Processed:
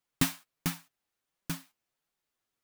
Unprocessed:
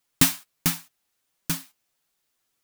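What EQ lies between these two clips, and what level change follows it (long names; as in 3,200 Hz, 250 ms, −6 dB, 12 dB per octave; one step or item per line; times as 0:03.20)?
high-shelf EQ 3,300 Hz −7.5 dB
−5.5 dB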